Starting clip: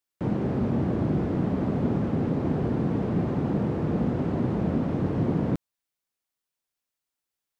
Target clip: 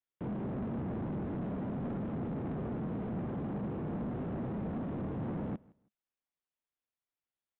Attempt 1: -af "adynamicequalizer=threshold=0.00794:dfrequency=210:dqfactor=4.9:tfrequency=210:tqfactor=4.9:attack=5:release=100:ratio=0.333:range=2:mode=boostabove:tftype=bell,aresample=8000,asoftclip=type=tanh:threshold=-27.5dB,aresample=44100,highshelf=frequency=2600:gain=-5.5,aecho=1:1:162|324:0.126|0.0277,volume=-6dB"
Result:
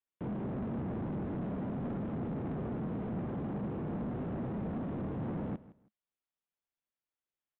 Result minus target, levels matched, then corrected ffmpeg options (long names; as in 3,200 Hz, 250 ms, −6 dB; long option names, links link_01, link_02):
echo-to-direct +6 dB
-af "adynamicequalizer=threshold=0.00794:dfrequency=210:dqfactor=4.9:tfrequency=210:tqfactor=4.9:attack=5:release=100:ratio=0.333:range=2:mode=boostabove:tftype=bell,aresample=8000,asoftclip=type=tanh:threshold=-27.5dB,aresample=44100,highshelf=frequency=2600:gain=-5.5,aecho=1:1:162|324:0.0631|0.0139,volume=-6dB"